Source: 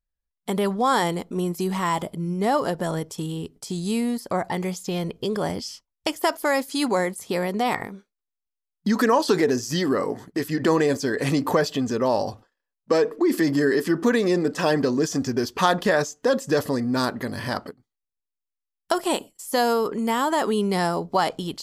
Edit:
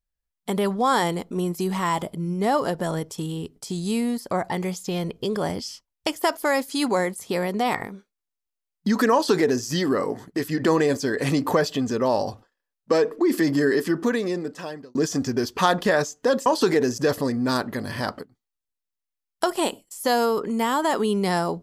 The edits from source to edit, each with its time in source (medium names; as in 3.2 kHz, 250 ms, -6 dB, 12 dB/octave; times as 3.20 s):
9.13–9.65 s: copy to 16.46 s
13.77–14.95 s: fade out